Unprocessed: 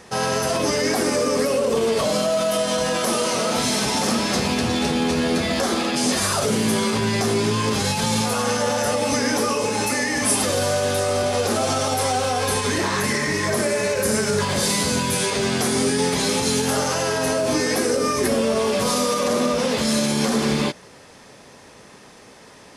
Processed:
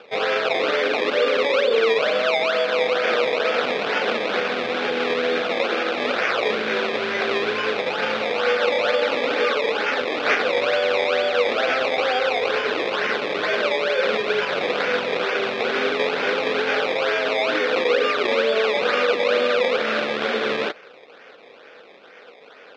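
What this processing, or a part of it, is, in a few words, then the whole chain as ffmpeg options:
circuit-bent sampling toy: -af "acrusher=samples=21:mix=1:aa=0.000001:lfo=1:lforange=21:lforate=2.2,highpass=460,equalizer=f=480:t=q:w=4:g=8,equalizer=f=950:t=q:w=4:g=-7,equalizer=f=1.5k:t=q:w=4:g=6,equalizer=f=2.4k:t=q:w=4:g=6,equalizer=f=3.6k:t=q:w=4:g=5,lowpass=f=4.4k:w=0.5412,lowpass=f=4.4k:w=1.3066"

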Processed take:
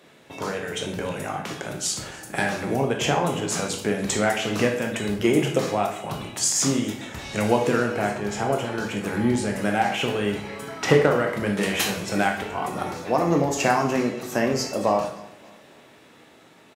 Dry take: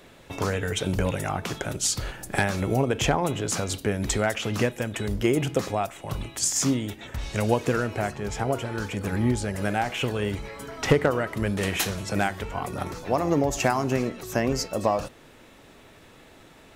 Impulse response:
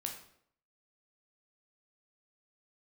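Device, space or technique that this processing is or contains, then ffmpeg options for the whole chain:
far laptop microphone: -filter_complex "[0:a]highshelf=f=11k:g=-4.5,aecho=1:1:287|574|861:0.075|0.0337|0.0152[a];[1:a]atrim=start_sample=2205[b];[a][b]afir=irnorm=-1:irlink=0,highpass=150,dynaudnorm=f=720:g=9:m=5dB"

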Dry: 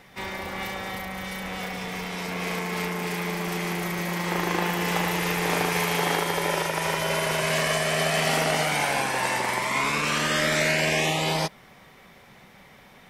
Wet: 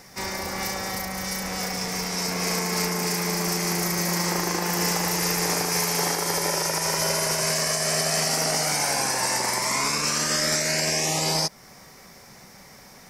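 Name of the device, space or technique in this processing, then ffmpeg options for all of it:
over-bright horn tweeter: -af "highshelf=f=4.2k:t=q:w=3:g=7.5,alimiter=limit=-16dB:level=0:latency=1:release=269,volume=2.5dB"

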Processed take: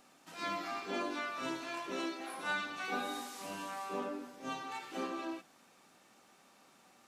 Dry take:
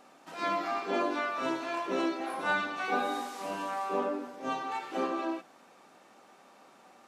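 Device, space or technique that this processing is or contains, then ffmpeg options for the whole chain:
smiley-face EQ: -filter_complex "[0:a]asettb=1/sr,asplit=3[a][b][c];[a]atrim=end=1.904[d];[b]atrim=start=1.9:end=2.7,asetpts=PTS-STARTPTS,afade=t=in:d=0.004:c=qsin,afade=t=out:st=0.796:d=0.004:c=qsin,highpass=f=230:p=1[e];[c]atrim=start=2.696[f];[d][e]acrossfade=d=0.004:c1=hsin:c2=qsin[g];[g][f]acrossfade=d=0.004:c1=qsin:c2=hsin,lowshelf=f=85:g=7,equalizer=f=630:t=o:w=2.8:g=-8,highshelf=f=6.9k:g=4.5,volume=-1.5dB"

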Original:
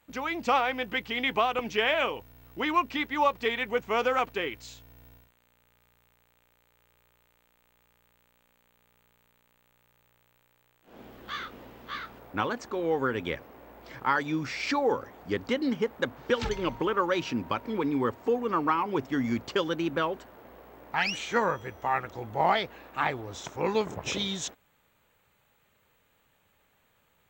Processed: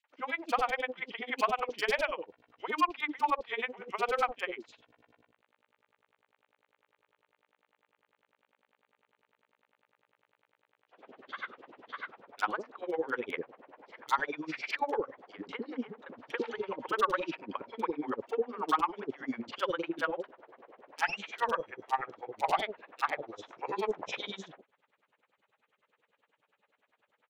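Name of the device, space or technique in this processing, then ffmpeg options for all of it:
helicopter radio: -filter_complex "[0:a]highpass=370,lowpass=2.8k,aeval=exprs='val(0)*pow(10,-31*(0.5-0.5*cos(2*PI*10*n/s))/20)':c=same,asoftclip=type=hard:threshold=-23.5dB,acrossover=split=530|3500[a][b][c];[b]adelay=40[d];[a]adelay=100[e];[e][d][c]amix=inputs=3:normalize=0,volume=5dB"

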